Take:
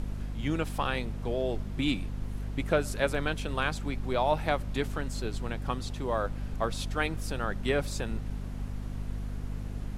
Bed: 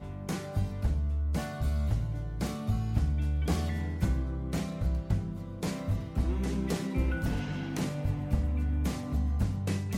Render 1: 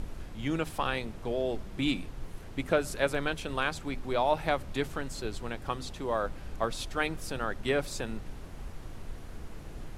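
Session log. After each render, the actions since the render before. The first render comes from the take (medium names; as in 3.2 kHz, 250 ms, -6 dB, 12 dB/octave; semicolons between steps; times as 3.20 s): hum notches 50/100/150/200/250 Hz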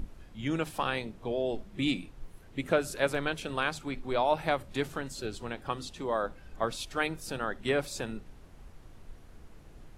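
noise print and reduce 9 dB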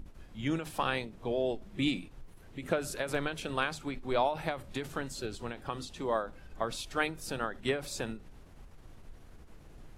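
endings held to a fixed fall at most 130 dB/s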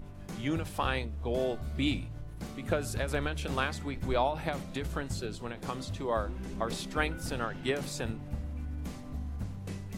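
add bed -8.5 dB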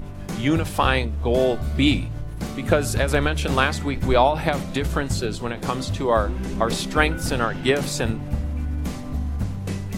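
trim +11.5 dB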